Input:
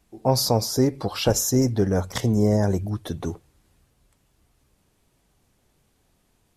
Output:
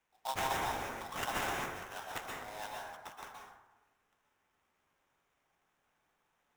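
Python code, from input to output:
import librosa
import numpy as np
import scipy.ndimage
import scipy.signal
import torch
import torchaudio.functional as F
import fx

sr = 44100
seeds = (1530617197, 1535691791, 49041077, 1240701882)

y = fx.tracing_dist(x, sr, depth_ms=0.27)
y = scipy.signal.sosfilt(scipy.signal.butter(6, 810.0, 'highpass', fs=sr, output='sos'), y)
y = fx.high_shelf(y, sr, hz=11000.0, db=-8.5)
y = fx.sample_hold(y, sr, seeds[0], rate_hz=4500.0, jitter_pct=20)
y = fx.rev_plate(y, sr, seeds[1], rt60_s=1.0, hf_ratio=0.45, predelay_ms=110, drr_db=-2.0)
y = y * 10.0 ** (-9.0 / 20.0)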